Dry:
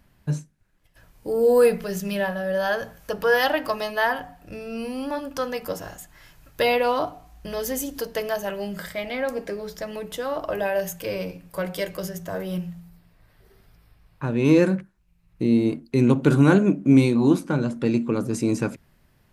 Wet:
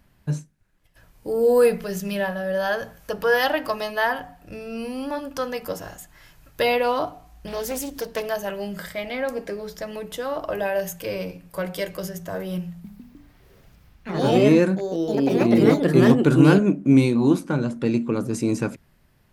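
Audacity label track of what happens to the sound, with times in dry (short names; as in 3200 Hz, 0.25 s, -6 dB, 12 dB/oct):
7.470000	8.260000	Doppler distortion depth 0.27 ms
12.690000	17.150000	echoes that change speed 0.153 s, each echo +3 st, echoes 3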